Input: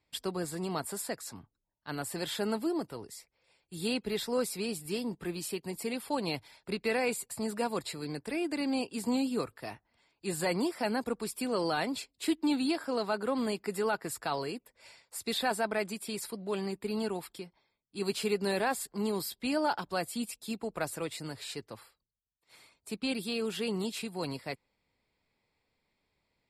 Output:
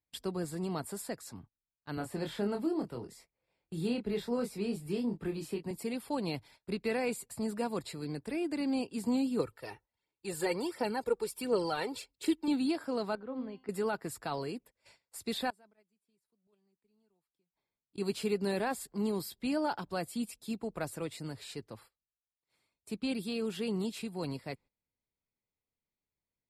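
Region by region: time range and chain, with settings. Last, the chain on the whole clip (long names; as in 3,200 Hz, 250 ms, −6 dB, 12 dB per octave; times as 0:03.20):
0:01.97–0:05.71: high-shelf EQ 3,600 Hz −8.5 dB + double-tracking delay 25 ms −5.5 dB + multiband upward and downward compressor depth 40%
0:09.39–0:12.48: low-shelf EQ 120 Hz −9.5 dB + comb filter 2.2 ms, depth 41% + phase shifter 1.4 Hz, delay 2.6 ms, feedback 48%
0:13.15–0:13.69: upward compression, threshold −35 dBFS + high-frequency loss of the air 290 metres + tuned comb filter 260 Hz, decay 0.42 s, mix 70%
0:15.50–0:17.98: gate with flip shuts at −38 dBFS, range −26 dB + multiband upward and downward compressor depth 40%
whole clip: noise gate −54 dBFS, range −15 dB; low-shelf EQ 430 Hz +7.5 dB; level −5.5 dB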